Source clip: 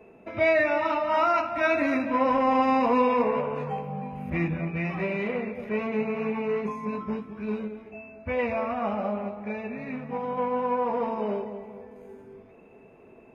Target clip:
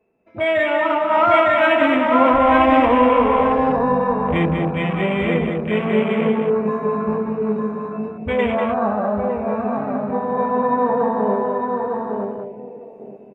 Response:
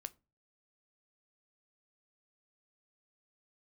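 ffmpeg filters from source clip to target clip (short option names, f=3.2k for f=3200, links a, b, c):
-filter_complex "[0:a]asettb=1/sr,asplit=3[a][b][c];[a]atrim=end=2.334[d];[b]atrim=start=2.33:end=3.7,asetpts=PTS-STARTPTS,afade=t=in:d=0.004:c=qsin,afade=t=out:st=1.366:d=0.004:c=qsin,lowshelf=f=100:t=q:w=3:g=10.5[e];[c]atrim=start=3.696[f];[d][e]acrossfade=d=0.004:c1=hsin:c2=qsin[g];[g][f]acrossfade=d=0.004:c1=qsin:c2=hsin,asplit=2[h][i];[i]aecho=0:1:906|1812|2718:0.596|0.131|0.0288[j];[h][j]amix=inputs=2:normalize=0,dynaudnorm=f=150:g=9:m=6.5dB,afwtdn=0.0447,asplit=2[k][l];[l]aecho=0:1:194:0.501[m];[k][m]amix=inputs=2:normalize=0,volume=1dB"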